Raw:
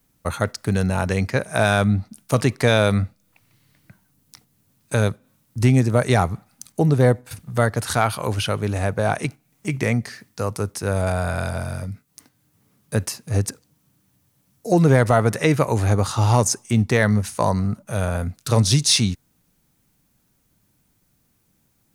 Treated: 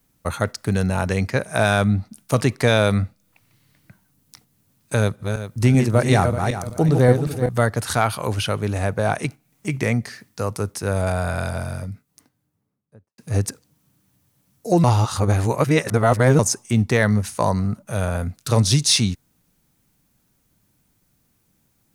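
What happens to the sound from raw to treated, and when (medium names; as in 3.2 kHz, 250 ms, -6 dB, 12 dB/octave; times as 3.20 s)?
4.98–7.49 s: backward echo that repeats 191 ms, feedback 48%, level -5 dB
11.59–13.18 s: studio fade out
14.84–16.39 s: reverse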